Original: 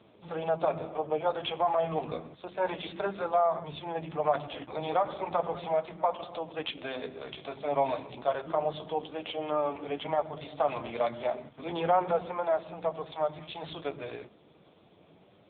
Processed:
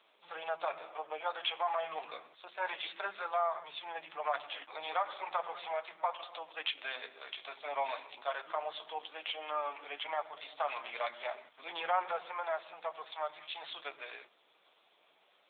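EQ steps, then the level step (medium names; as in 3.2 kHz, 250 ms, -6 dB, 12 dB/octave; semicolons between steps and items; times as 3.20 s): dynamic bell 1.9 kHz, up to +3 dB, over -48 dBFS, Q 1.2; high-pass 1.1 kHz 12 dB/octave; 0.0 dB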